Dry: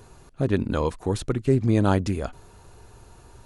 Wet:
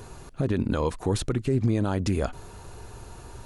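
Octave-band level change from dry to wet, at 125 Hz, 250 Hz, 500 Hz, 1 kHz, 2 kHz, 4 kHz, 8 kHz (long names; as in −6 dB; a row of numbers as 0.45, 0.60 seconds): −2.0, −2.5, −3.0, −4.0, −3.0, +0.5, +2.5 decibels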